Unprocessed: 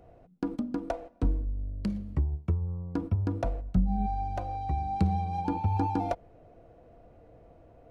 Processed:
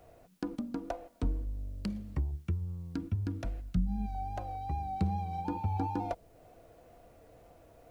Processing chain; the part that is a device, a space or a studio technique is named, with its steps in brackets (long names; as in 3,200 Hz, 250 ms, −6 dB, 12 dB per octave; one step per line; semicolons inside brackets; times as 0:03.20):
0:02.31–0:04.15: flat-topped bell 720 Hz −9.5 dB
noise-reduction cassette on a plain deck (one half of a high-frequency compander encoder only; tape wow and flutter; white noise bed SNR 39 dB)
level −5 dB